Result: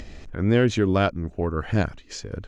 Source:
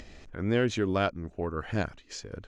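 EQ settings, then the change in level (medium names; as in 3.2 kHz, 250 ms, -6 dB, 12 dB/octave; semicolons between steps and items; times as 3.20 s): bass shelf 260 Hz +5.5 dB; +4.5 dB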